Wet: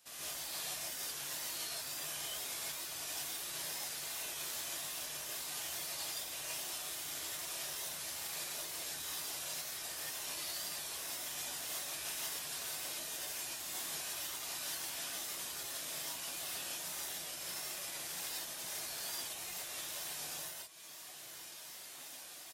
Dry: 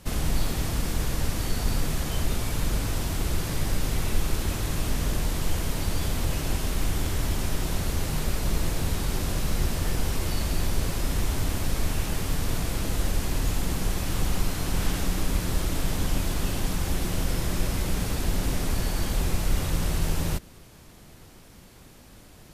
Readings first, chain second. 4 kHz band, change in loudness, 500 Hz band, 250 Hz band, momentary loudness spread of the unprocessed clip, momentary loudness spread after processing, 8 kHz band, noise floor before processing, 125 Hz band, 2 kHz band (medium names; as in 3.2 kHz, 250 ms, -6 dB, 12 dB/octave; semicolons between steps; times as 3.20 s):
-5.5 dB, -10.5 dB, -17.0 dB, -27.0 dB, 1 LU, 2 LU, -4.0 dB, -49 dBFS, -34.5 dB, -9.0 dB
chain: low-pass 3.2 kHz 6 dB/octave; band-stop 2.2 kHz, Q 26; delay 118 ms -5.5 dB; wow and flutter 98 cents; high-pass 68 Hz 6 dB/octave; level rider; peak limiter -15 dBFS, peak gain reduction 10 dB; compression 2.5:1, threshold -30 dBFS, peak gain reduction 7.5 dB; differentiator; reverb removal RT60 1.9 s; peaking EQ 670 Hz +6.5 dB 0.29 oct; gated-style reverb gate 200 ms rising, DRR -8 dB; trim -2.5 dB